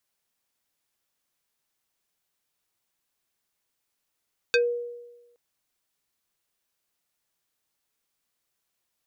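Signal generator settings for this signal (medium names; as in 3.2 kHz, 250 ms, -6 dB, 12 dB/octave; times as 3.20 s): FM tone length 0.82 s, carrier 479 Hz, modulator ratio 4.28, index 2.2, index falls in 0.14 s exponential, decay 1.11 s, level -16 dB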